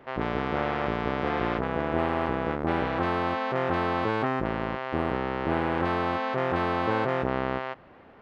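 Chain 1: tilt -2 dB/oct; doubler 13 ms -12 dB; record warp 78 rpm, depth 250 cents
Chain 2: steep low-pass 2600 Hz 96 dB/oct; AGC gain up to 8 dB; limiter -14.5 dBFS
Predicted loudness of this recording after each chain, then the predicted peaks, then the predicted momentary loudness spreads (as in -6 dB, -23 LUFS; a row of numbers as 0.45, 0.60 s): -25.5, -25.5 LUFS; -8.0, -14.5 dBFS; 3, 4 LU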